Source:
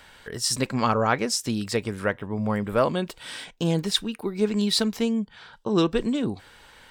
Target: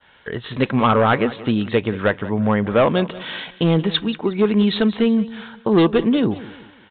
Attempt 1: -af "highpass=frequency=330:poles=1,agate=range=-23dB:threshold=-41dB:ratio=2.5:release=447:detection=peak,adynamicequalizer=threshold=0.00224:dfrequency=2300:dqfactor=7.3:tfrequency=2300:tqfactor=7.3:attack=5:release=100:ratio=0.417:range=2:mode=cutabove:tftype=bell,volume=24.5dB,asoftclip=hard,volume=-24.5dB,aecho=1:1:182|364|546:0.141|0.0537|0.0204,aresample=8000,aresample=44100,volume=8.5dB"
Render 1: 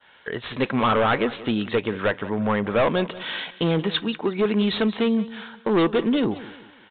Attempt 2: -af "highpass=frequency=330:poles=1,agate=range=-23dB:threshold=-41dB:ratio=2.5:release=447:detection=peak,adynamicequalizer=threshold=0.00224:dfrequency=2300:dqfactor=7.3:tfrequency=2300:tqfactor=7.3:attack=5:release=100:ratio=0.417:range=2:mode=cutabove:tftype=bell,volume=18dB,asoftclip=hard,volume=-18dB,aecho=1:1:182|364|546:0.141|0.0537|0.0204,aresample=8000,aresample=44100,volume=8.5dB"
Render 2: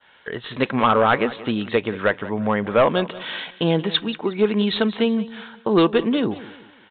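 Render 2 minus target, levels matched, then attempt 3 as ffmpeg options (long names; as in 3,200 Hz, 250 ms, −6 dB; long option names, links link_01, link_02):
125 Hz band −4.0 dB
-af "highpass=frequency=83:poles=1,agate=range=-23dB:threshold=-41dB:ratio=2.5:release=447:detection=peak,adynamicequalizer=threshold=0.00224:dfrequency=2300:dqfactor=7.3:tfrequency=2300:tqfactor=7.3:attack=5:release=100:ratio=0.417:range=2:mode=cutabove:tftype=bell,volume=18dB,asoftclip=hard,volume=-18dB,aecho=1:1:182|364|546:0.141|0.0537|0.0204,aresample=8000,aresample=44100,volume=8.5dB"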